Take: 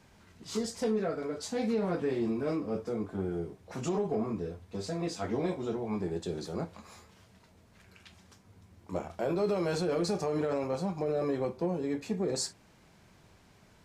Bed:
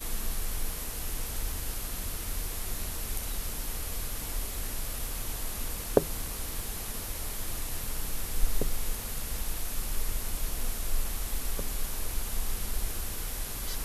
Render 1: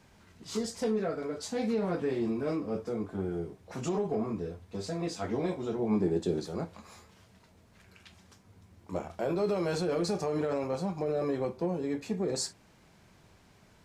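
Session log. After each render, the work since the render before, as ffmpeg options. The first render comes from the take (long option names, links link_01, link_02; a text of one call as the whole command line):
ffmpeg -i in.wav -filter_complex "[0:a]asettb=1/sr,asplit=3[link_01][link_02][link_03];[link_01]atrim=end=5.794[link_04];[link_02]atrim=start=5.79:end=6.4,asetpts=PTS-STARTPTS,afade=type=in:duration=0.004:curve=qsin,afade=type=out:start_time=0.606:duration=0.004:curve=qsin,equalizer=frequency=280:width_type=o:width=1.7:gain=8[link_05];[link_03]atrim=start=6.396[link_06];[link_04][link_05]acrossfade=duration=0.004:curve1=hsin:curve2=qsin[link_07];[link_07][link_06]acrossfade=duration=0.004:curve1=qsin:curve2=hsin" out.wav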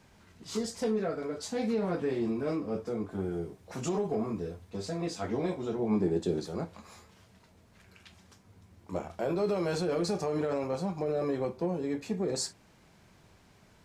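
ffmpeg -i in.wav -filter_complex "[0:a]asettb=1/sr,asplit=3[link_01][link_02][link_03];[link_01]atrim=end=3.114[link_04];[link_02]atrim=start=3.11:end=4.7,asetpts=PTS-STARTPTS,afade=type=in:duration=0.004:curve=qsin,afade=type=out:start_time=1.586:duration=0.004:curve=qsin,highshelf=frequency=5600:gain=5[link_05];[link_03]atrim=start=4.696[link_06];[link_04][link_05]acrossfade=duration=0.004:curve1=hsin:curve2=qsin[link_07];[link_07][link_06]acrossfade=duration=0.004:curve1=qsin:curve2=hsin" out.wav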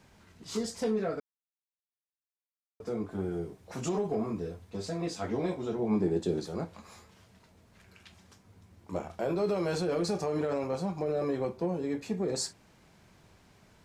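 ffmpeg -i in.wav -filter_complex "[0:a]asplit=3[link_01][link_02][link_03];[link_01]atrim=end=1.2,asetpts=PTS-STARTPTS,afade=type=out:start_time=1.196:duration=0.004:curve=hsin[link_04];[link_02]atrim=start=1.2:end=2.8,asetpts=PTS-STARTPTS,volume=0[link_05];[link_03]atrim=start=2.8,asetpts=PTS-STARTPTS,afade=type=in:duration=0.004:curve=hsin[link_06];[link_04][link_05][link_06]concat=n=3:v=0:a=1" out.wav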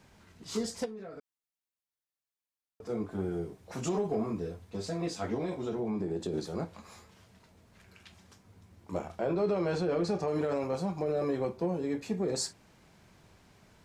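ffmpeg -i in.wav -filter_complex "[0:a]asplit=3[link_01][link_02][link_03];[link_01]afade=type=out:start_time=0.84:duration=0.02[link_04];[link_02]acompressor=threshold=-43dB:ratio=4:attack=3.2:release=140:knee=1:detection=peak,afade=type=in:start_time=0.84:duration=0.02,afade=type=out:start_time=2.88:duration=0.02[link_05];[link_03]afade=type=in:start_time=2.88:duration=0.02[link_06];[link_04][link_05][link_06]amix=inputs=3:normalize=0,asettb=1/sr,asplit=3[link_07][link_08][link_09];[link_07]atrim=end=5.344[link_10];[link_08]atrim=start=5.34:end=6.34,asetpts=PTS-STARTPTS,afade=type=in:duration=0.004:curve=qsin,afade=type=out:start_time=0.996:duration=0.004:curve=qsin,acompressor=threshold=-29dB:ratio=6:attack=3.2:release=140:knee=1:detection=peak[link_11];[link_09]atrim=start=6.336[link_12];[link_10][link_11]acrossfade=duration=0.004:curve1=hsin:curve2=qsin[link_13];[link_13][link_12]acrossfade=duration=0.004:curve1=qsin:curve2=hsin,asettb=1/sr,asplit=3[link_14][link_15][link_16];[link_14]atrim=end=9.194[link_17];[link_15]atrim=start=9.19:end=10.28,asetpts=PTS-STARTPTS,afade=type=in:duration=0.004:curve=qsin,afade=type=out:start_time=1.086:duration=0.004:curve=qsin,aemphasis=mode=reproduction:type=50fm[link_18];[link_16]atrim=start=10.276[link_19];[link_17][link_18]acrossfade=duration=0.004:curve1=hsin:curve2=qsin[link_20];[link_20][link_19]acrossfade=duration=0.004:curve1=qsin:curve2=hsin" out.wav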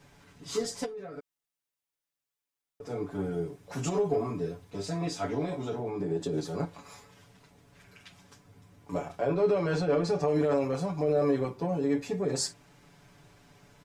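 ffmpeg -i in.wav -af "bandreject=frequency=4300:width=25,aecho=1:1:7:0.95" out.wav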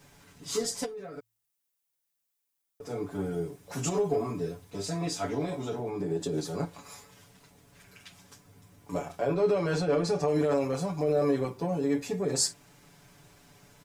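ffmpeg -i in.wav -af "highshelf=frequency=7100:gain=11,bandreject=frequency=55.99:width_type=h:width=4,bandreject=frequency=111.98:width_type=h:width=4" out.wav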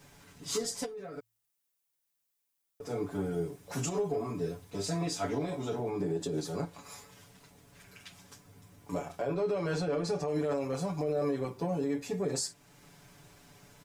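ffmpeg -i in.wav -af "alimiter=limit=-23dB:level=0:latency=1:release=407" out.wav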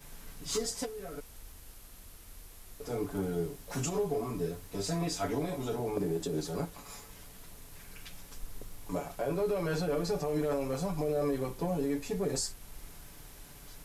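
ffmpeg -i in.wav -i bed.wav -filter_complex "[1:a]volume=-16.5dB[link_01];[0:a][link_01]amix=inputs=2:normalize=0" out.wav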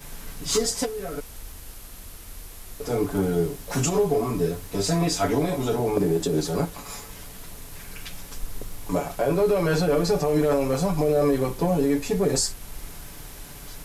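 ffmpeg -i in.wav -af "volume=10dB" out.wav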